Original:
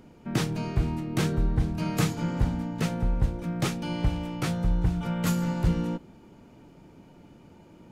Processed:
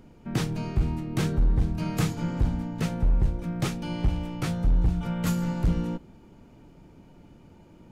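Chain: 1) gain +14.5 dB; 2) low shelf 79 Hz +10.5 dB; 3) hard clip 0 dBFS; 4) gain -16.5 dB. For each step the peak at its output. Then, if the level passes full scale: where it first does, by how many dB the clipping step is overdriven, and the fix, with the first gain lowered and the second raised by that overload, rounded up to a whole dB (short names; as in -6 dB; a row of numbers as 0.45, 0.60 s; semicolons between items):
+3.0, +8.5, 0.0, -16.5 dBFS; step 1, 8.5 dB; step 1 +5.5 dB, step 4 -7.5 dB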